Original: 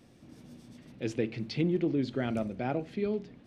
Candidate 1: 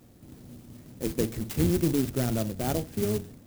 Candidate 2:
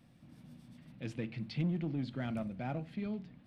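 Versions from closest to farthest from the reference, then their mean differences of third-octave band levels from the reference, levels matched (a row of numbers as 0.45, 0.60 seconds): 2, 1; 2.5, 8.0 decibels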